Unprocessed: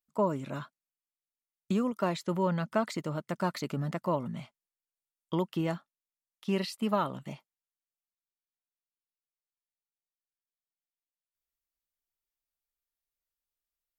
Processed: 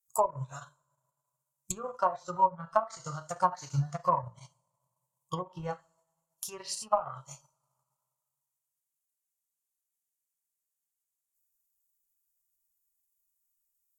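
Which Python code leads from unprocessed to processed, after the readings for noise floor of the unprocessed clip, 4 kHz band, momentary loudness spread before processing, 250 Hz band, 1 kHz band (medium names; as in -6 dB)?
under -85 dBFS, -3.5 dB, 12 LU, -12.5 dB, +6.0 dB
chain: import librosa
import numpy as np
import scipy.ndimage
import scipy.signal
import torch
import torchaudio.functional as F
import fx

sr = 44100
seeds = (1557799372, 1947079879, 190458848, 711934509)

y = fx.rev_double_slope(x, sr, seeds[0], early_s=0.63, late_s=1.9, knee_db=-20, drr_db=2.0)
y = fx.env_lowpass_down(y, sr, base_hz=560.0, full_db=-21.0)
y = fx.curve_eq(y, sr, hz=(130.0, 200.0, 330.0, 480.0, 1000.0, 2000.0, 3600.0, 6900.0), db=(0, -28, -29, -14, -1, -20, -14, 14))
y = fx.transient(y, sr, attack_db=6, sustain_db=-9)
y = fx.noise_reduce_blind(y, sr, reduce_db=12)
y = y * librosa.db_to_amplitude(8.0)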